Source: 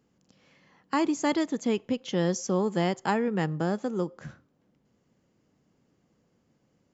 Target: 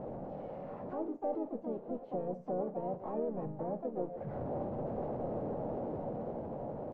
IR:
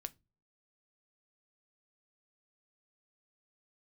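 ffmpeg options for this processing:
-filter_complex "[0:a]aeval=exprs='val(0)+0.5*0.0398*sgn(val(0))':c=same,agate=range=-13dB:threshold=-25dB:ratio=16:detection=peak,dynaudnorm=f=590:g=5:m=5dB,alimiter=limit=-18.5dB:level=0:latency=1:release=125,acompressor=threshold=-39dB:ratio=20,asoftclip=type=tanh:threshold=-35.5dB,lowpass=f=590:t=q:w=4.9[a];[1:a]atrim=start_sample=2205,atrim=end_sample=6615,asetrate=28665,aresample=44100[b];[a][b]afir=irnorm=-1:irlink=0,asplit=3[c][d][e];[d]asetrate=37084,aresample=44100,atempo=1.18921,volume=-9dB[f];[e]asetrate=58866,aresample=44100,atempo=0.749154,volume=-6dB[g];[c][f][g]amix=inputs=3:normalize=0,volume=1.5dB"

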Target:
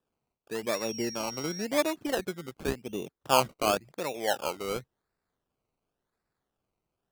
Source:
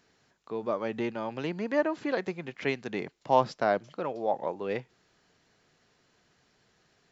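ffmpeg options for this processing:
-filter_complex "[0:a]afwtdn=0.0126,asubboost=boost=3:cutoff=76,acrusher=samples=20:mix=1:aa=0.000001:lfo=1:lforange=12:lforate=0.92,asettb=1/sr,asplit=3[a][b][c];[a]atrim=end=0.734[d];[b]atrim=start=0.73:end=1.65,asetpts=PTS-STARTPTS,afade=t=in:d=0.004:c=qsin,afade=t=out:st=0.916:d=0.004:c=qsin,aeval=exprs='val(0)+0.0112*sin(2*PI*5600*n/s)':c=same[e];[c]atrim=start=1.646[f];[d][e]acrossfade=d=0.004:c1=hsin:c2=qsin[g];[g][f]acrossfade=d=0.004:c1=qsin:c2=hsin"

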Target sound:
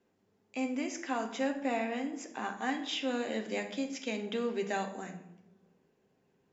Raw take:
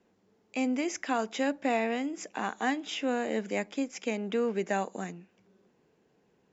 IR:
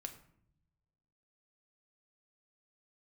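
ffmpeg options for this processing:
-filter_complex "[0:a]asettb=1/sr,asplit=3[a][b][c];[a]atrim=end=2.744[d];[b]atrim=start=2.74:end=4.85,asetpts=PTS-STARTPTS,afade=t=in:d=0.004:c=qsin,afade=t=out:st=2.106:d=0.004:c=qsin,equalizer=f=3.9k:t=o:w=0.88:g=9[e];[c]atrim=start=4.846[f];[d][e]acrossfade=d=0.004:c1=hsin:c2=qsin[g];[g][f]acrossfade=d=0.004:c1=qsin:c2=hsin[h];[1:a]atrim=start_sample=2205,asetrate=32193,aresample=44100[i];[h][i]afir=irnorm=-1:irlink=0,volume=-2.5dB"

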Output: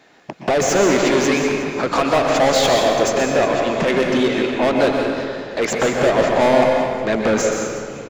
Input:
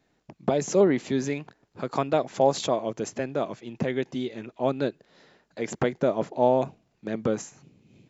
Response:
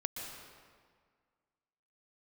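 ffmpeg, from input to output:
-filter_complex "[0:a]asplit=2[a][b];[b]highpass=f=720:p=1,volume=30dB,asoftclip=type=tanh:threshold=-8dB[c];[a][c]amix=inputs=2:normalize=0,lowpass=f=3.7k:p=1,volume=-6dB,asplit=6[d][e][f][g][h][i];[e]adelay=365,afreqshift=-43,volume=-17.5dB[j];[f]adelay=730,afreqshift=-86,volume=-23dB[k];[g]adelay=1095,afreqshift=-129,volume=-28.5dB[l];[h]adelay=1460,afreqshift=-172,volume=-34dB[m];[i]adelay=1825,afreqshift=-215,volume=-39.6dB[n];[d][j][k][l][m][n]amix=inputs=6:normalize=0[o];[1:a]atrim=start_sample=2205[p];[o][p]afir=irnorm=-1:irlink=0"

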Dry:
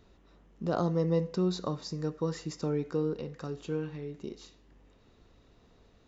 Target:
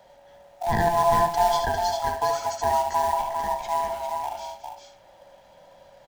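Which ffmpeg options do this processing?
-filter_complex "[0:a]afftfilt=real='real(if(lt(b,1008),b+24*(1-2*mod(floor(b/24),2)),b),0)':imag='imag(if(lt(b,1008),b+24*(1-2*mod(floor(b/24),2)),b),0)':win_size=2048:overlap=0.75,acrossover=split=160|490|1200[a][b][c][d];[c]acrusher=bits=3:mode=log:mix=0:aa=0.000001[e];[a][b][e][d]amix=inputs=4:normalize=0,aecho=1:1:71|215|401|460:0.501|0.224|0.531|0.211,volume=6.5dB"

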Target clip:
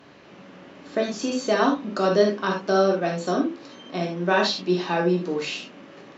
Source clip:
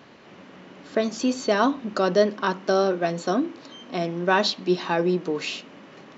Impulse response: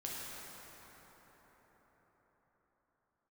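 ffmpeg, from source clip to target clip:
-filter_complex "[1:a]atrim=start_sample=2205,atrim=end_sample=3087,asetrate=34839,aresample=44100[a];[0:a][a]afir=irnorm=-1:irlink=0,volume=2dB"

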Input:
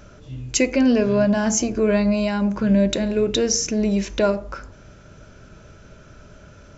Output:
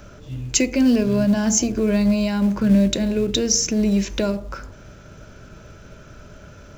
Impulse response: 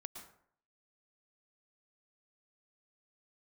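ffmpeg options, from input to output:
-filter_complex "[0:a]acrossover=split=300|3000[a][b][c];[b]acompressor=threshold=-34dB:ratio=2[d];[a][d][c]amix=inputs=3:normalize=0,asplit=2[e][f];[f]acrusher=bits=4:mode=log:mix=0:aa=0.000001,volume=-8.5dB[g];[e][g]amix=inputs=2:normalize=0"

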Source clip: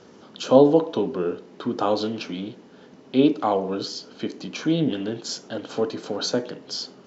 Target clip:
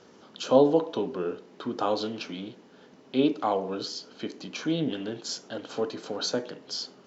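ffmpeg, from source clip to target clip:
-af "lowshelf=f=410:g=-4.5,volume=-3dB"

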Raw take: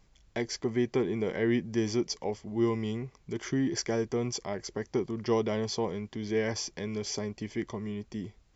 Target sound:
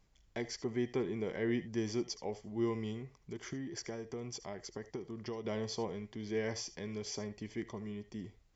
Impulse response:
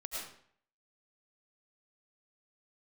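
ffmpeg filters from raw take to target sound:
-filter_complex "[0:a]asettb=1/sr,asplit=3[a][b][c];[a]atrim=end=2.934[d];[b]atrim=start=2.93:end=5.45,asetpts=PTS-STARTPTS,afade=t=in:d=0.004:c=qsin,afade=t=out:st=2.516:d=0.004:c=qsin,acompressor=threshold=-32dB:ratio=6[e];[c]atrim=start=5.446[f];[d][e]acrossfade=d=0.004:c1=hsin:c2=qsin[g];[g][f]acrossfade=d=0.004:c1=qsin:c2=hsin[h];[1:a]atrim=start_sample=2205,atrim=end_sample=3528[i];[h][i]afir=irnorm=-1:irlink=0,volume=-1.5dB"

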